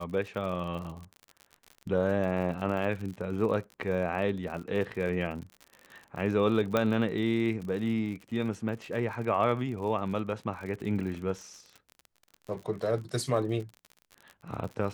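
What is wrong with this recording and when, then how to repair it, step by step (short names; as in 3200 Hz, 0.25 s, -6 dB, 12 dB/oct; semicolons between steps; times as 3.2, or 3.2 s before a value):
crackle 56/s -37 dBFS
6.77 pop -13 dBFS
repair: de-click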